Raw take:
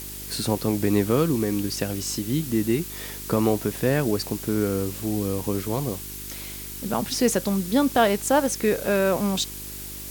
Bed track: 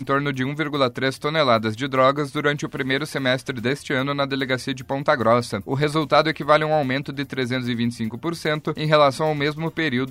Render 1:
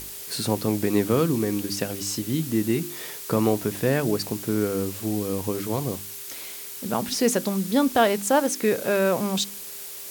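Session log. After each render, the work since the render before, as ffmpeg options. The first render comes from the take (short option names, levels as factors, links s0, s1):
-af "bandreject=f=50:t=h:w=4,bandreject=f=100:t=h:w=4,bandreject=f=150:t=h:w=4,bandreject=f=200:t=h:w=4,bandreject=f=250:t=h:w=4,bandreject=f=300:t=h:w=4,bandreject=f=350:t=h:w=4"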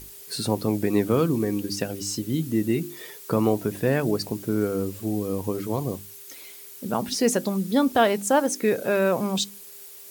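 -af "afftdn=nr=9:nf=-38"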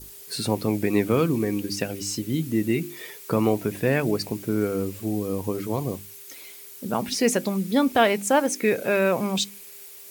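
-af "adynamicequalizer=threshold=0.00355:dfrequency=2300:dqfactor=2.6:tfrequency=2300:tqfactor=2.6:attack=5:release=100:ratio=0.375:range=4:mode=boostabove:tftype=bell"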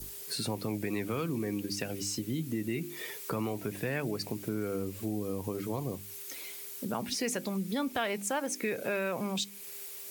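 -filter_complex "[0:a]acrossover=split=110|920[s0][s1][s2];[s1]alimiter=limit=0.119:level=0:latency=1[s3];[s0][s3][s2]amix=inputs=3:normalize=0,acompressor=threshold=0.0158:ratio=2"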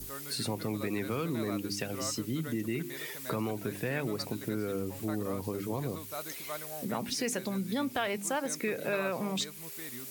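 -filter_complex "[1:a]volume=0.0596[s0];[0:a][s0]amix=inputs=2:normalize=0"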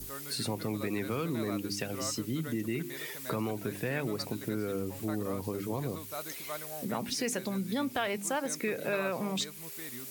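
-af anull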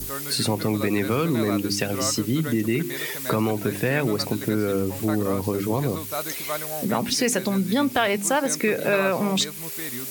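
-af "volume=3.35"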